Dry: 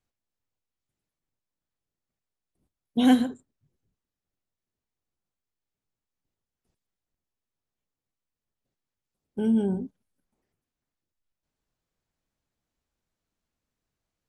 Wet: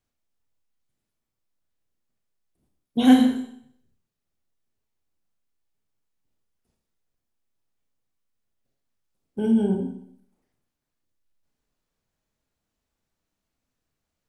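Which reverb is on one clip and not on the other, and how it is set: Schroeder reverb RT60 0.66 s, combs from 27 ms, DRR 3 dB; gain +1.5 dB

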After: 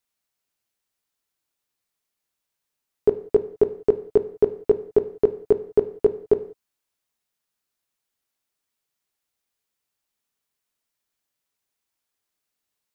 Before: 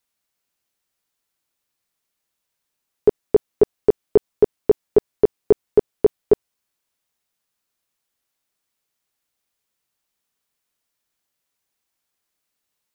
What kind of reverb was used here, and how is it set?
non-linear reverb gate 0.21 s falling, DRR 10.5 dB; gain -4 dB

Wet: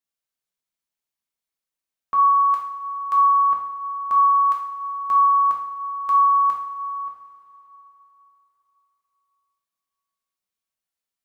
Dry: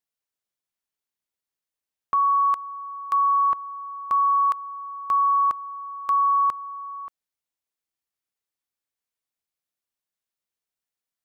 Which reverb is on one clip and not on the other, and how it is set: two-slope reverb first 0.58 s, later 3.7 s, from -16 dB, DRR -1.5 dB; gain -3.5 dB

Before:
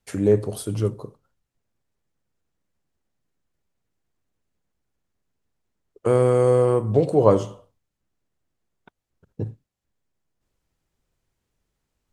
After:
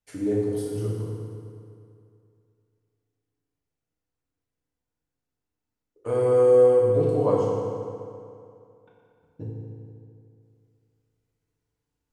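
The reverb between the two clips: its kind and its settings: FDN reverb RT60 2.5 s, low-frequency decay 0.95×, high-frequency decay 0.7×, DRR -5.5 dB; gain -12.5 dB

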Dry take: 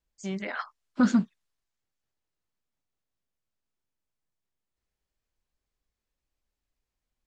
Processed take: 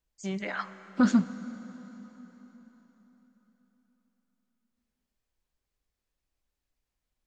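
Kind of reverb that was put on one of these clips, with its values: plate-style reverb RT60 4.3 s, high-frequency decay 0.9×, DRR 12.5 dB

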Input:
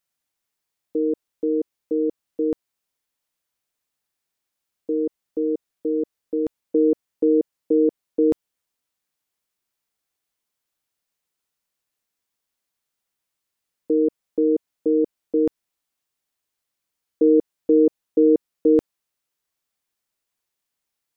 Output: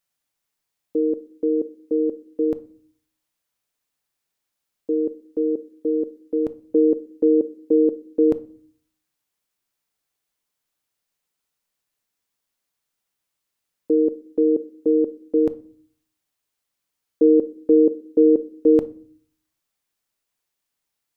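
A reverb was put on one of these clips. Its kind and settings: shoebox room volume 440 m³, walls furnished, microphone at 0.38 m; gain +1 dB

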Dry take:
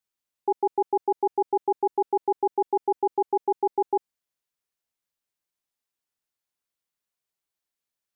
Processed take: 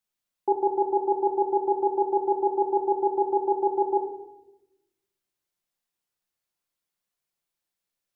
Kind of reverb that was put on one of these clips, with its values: shoebox room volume 350 m³, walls mixed, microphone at 0.88 m

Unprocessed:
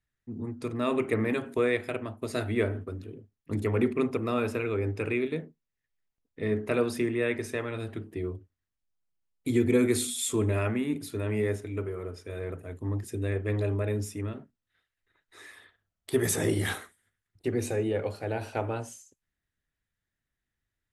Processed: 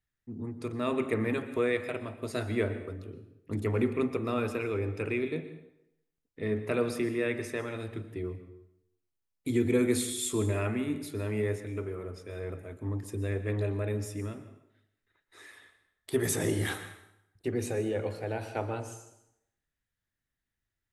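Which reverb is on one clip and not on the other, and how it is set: plate-style reverb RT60 0.79 s, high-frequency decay 0.85×, pre-delay 0.105 s, DRR 11.5 dB; gain -2.5 dB

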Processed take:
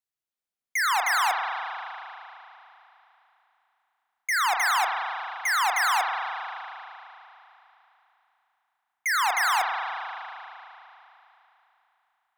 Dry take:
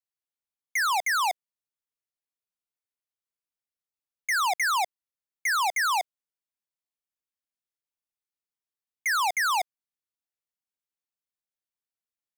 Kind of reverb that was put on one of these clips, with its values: spring tank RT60 3.2 s, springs 35 ms, chirp 75 ms, DRR 1.5 dB

